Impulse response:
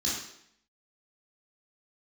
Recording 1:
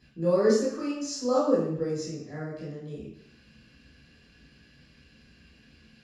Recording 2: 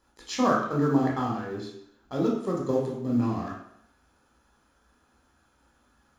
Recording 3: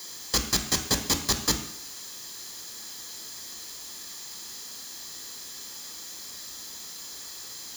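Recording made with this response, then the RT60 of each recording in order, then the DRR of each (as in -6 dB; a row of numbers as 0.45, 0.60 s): 1; 0.70, 0.70, 0.70 s; -8.0, -4.0, 5.0 dB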